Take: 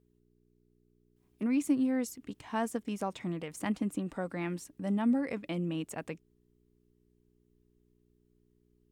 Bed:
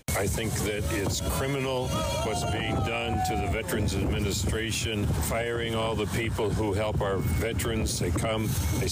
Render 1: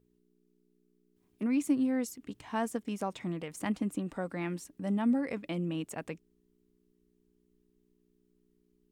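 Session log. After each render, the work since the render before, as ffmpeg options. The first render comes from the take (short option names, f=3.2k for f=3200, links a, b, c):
-af "bandreject=f=60:t=h:w=4,bandreject=f=120:t=h:w=4"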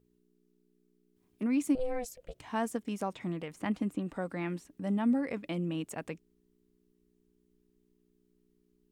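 -filter_complex "[0:a]asettb=1/sr,asplit=3[a][b][c];[a]atrim=end=1.754[d];[b]atrim=start=1.75:end=2.39,asetpts=PTS-STARTPTS,afade=t=in:d=0.004:c=qsin,afade=t=out:st=0.636:d=0.004:c=qsin,aeval=exprs='val(0)*sin(2*PI*250*n/s)':c=same[e];[c]atrim=start=2.386[f];[d][e]acrossfade=d=0.004:c1=hsin:c2=qsin[g];[g][f]acrossfade=d=0.004:c1=qsin:c2=hsin,asettb=1/sr,asplit=3[h][i][j];[h]atrim=end=3.134[k];[i]atrim=start=3.13:end=5.34,asetpts=PTS-STARTPTS,afade=t=in:d=0.004:c=qsin,afade=t=out:st=2.206:d=0.004:c=qsin,acrossover=split=3600[l][m];[m]acompressor=threshold=-56dB:ratio=4:attack=1:release=60[n];[l][n]amix=inputs=2:normalize=0[o];[j]atrim=start=5.336[p];[k][o]acrossfade=d=0.004:c1=hsin:c2=qsin[q];[q][p]acrossfade=d=0.004:c1=qsin:c2=hsin"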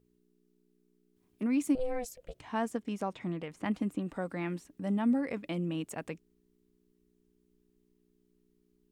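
-filter_complex "[0:a]asettb=1/sr,asplit=3[a][b][c];[a]atrim=end=2.404[d];[b]atrim=start=2.4:end=3.65,asetpts=PTS-STARTPTS,afade=t=in:d=0.004:c=qsin,afade=t=out:st=1.246:d=0.004:c=qsin,highshelf=f=8.1k:g=-9.5[e];[c]atrim=start=3.646[f];[d][e]acrossfade=d=0.004:c1=hsin:c2=qsin[g];[g][f]acrossfade=d=0.004:c1=qsin:c2=hsin"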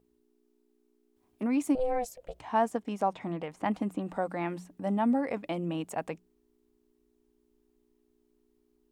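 -af "equalizer=f=780:t=o:w=1.1:g=10,bandreject=f=60:t=h:w=6,bandreject=f=120:t=h:w=6,bandreject=f=180:t=h:w=6"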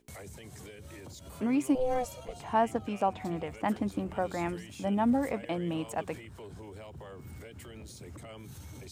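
-filter_complex "[1:a]volume=-19dB[a];[0:a][a]amix=inputs=2:normalize=0"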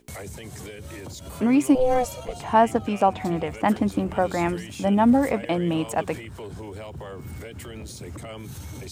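-af "volume=9dB"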